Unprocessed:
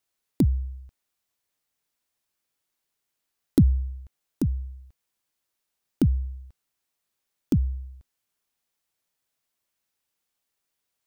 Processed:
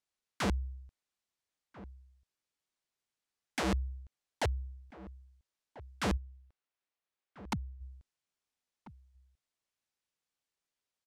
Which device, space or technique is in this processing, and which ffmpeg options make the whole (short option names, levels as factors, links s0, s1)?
overflowing digital effects unit: -filter_complex "[0:a]asplit=3[s0][s1][s2];[s0]afade=t=out:st=6.16:d=0.02[s3];[s1]bass=f=250:g=-10,treble=f=4000:g=-9,afade=t=in:st=6.16:d=0.02,afade=t=out:st=7.8:d=0.02[s4];[s2]afade=t=in:st=7.8:d=0.02[s5];[s3][s4][s5]amix=inputs=3:normalize=0,aeval=exprs='(mod(8.91*val(0)+1,2)-1)/8.91':c=same,lowpass=8200,asplit=2[s6][s7];[s7]adelay=1341,volume=0.141,highshelf=f=4000:g=-30.2[s8];[s6][s8]amix=inputs=2:normalize=0,volume=0.447"